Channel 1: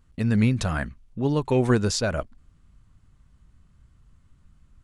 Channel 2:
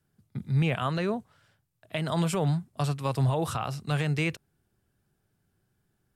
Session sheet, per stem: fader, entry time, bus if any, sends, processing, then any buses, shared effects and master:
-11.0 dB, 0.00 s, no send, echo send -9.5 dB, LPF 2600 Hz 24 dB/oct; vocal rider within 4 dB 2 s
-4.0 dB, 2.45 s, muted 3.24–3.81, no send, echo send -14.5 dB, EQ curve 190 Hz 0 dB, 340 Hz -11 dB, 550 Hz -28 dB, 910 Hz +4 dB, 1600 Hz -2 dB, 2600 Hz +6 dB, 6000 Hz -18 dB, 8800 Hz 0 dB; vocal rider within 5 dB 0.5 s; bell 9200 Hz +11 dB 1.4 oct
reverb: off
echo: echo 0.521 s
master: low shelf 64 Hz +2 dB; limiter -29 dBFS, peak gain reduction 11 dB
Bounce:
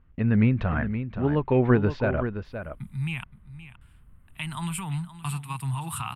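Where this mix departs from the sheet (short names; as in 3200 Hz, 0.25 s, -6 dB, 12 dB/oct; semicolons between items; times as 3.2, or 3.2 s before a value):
stem 1 -11.0 dB -> -1.0 dB; master: missing limiter -29 dBFS, peak gain reduction 11 dB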